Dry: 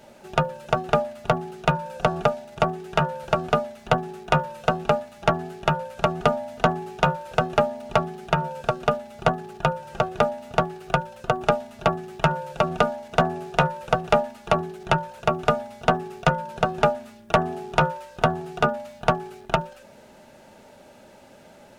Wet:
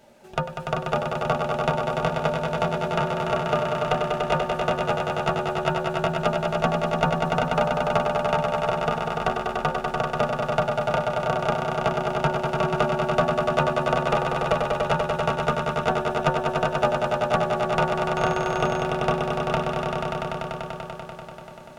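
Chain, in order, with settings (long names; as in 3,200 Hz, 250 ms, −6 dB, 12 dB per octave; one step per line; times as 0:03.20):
on a send: echo that builds up and dies away 97 ms, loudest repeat 5, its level −5.5 dB
0:18.16–0:18.83: on the sum: steady tone 6,500 Hz −43 dBFS
level −5 dB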